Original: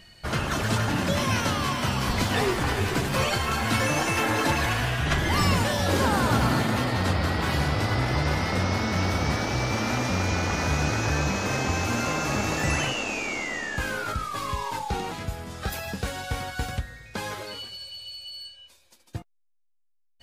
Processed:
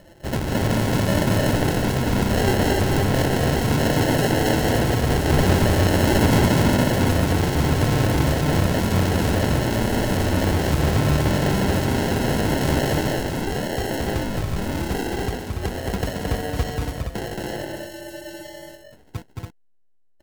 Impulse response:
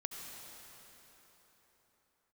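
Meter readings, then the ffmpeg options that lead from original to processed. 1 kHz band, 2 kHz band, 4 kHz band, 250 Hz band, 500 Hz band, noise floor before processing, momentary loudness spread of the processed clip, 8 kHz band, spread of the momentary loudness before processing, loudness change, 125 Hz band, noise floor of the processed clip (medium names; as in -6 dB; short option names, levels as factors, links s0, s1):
+1.0 dB, 0.0 dB, +1.5 dB, +7.5 dB, +7.0 dB, -63 dBFS, 12 LU, +2.0 dB, 12 LU, +4.5 dB, +6.5 dB, -52 dBFS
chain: -filter_complex "[0:a]acrusher=samples=37:mix=1:aa=0.000001,asplit=2[s0][s1];[s1]aecho=0:1:221.6|282.8:0.708|0.631[s2];[s0][s2]amix=inputs=2:normalize=0,volume=1.41"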